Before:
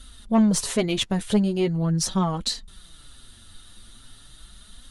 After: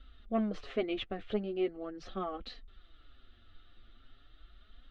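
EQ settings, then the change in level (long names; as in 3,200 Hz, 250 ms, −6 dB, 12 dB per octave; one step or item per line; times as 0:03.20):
low-pass filter 2,900 Hz 24 dB per octave
flat-topped bell 960 Hz +9.5 dB 1.1 octaves
phaser with its sweep stopped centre 390 Hz, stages 4
−7.5 dB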